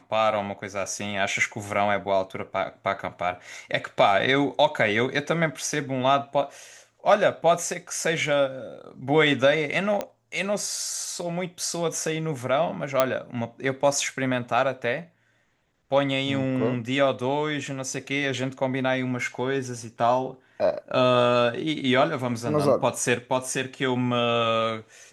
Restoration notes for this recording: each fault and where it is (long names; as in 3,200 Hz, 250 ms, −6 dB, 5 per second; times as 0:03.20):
0:10.01: click −14 dBFS
0:13.00: click −5 dBFS